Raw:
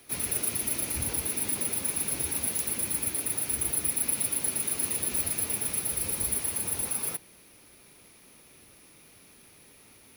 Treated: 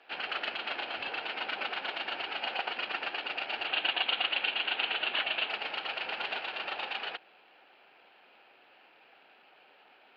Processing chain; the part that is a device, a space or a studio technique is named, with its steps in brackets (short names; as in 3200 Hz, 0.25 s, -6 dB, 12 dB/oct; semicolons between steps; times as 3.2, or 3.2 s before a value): toy sound module (decimation joined by straight lines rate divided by 6×; pulse-width modulation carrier 14000 Hz; speaker cabinet 640–3600 Hz, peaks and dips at 770 Hz +8 dB, 1100 Hz -7 dB, 2000 Hz -8 dB, 3600 Hz -10 dB); 3.67–5.5 resonant high shelf 4800 Hz -10.5 dB, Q 3; gain +2.5 dB